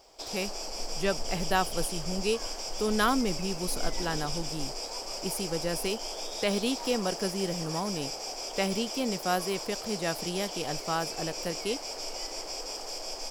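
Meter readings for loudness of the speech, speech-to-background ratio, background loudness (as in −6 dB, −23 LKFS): −32.5 LKFS, 3.0 dB, −35.5 LKFS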